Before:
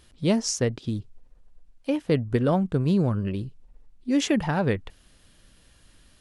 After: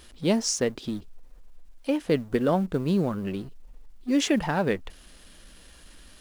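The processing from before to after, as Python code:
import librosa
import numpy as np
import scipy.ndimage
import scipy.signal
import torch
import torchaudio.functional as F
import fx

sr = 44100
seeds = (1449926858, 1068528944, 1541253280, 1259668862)

y = fx.law_mismatch(x, sr, coded='mu')
y = fx.peak_eq(y, sr, hz=110.0, db=-13.5, octaves=0.75)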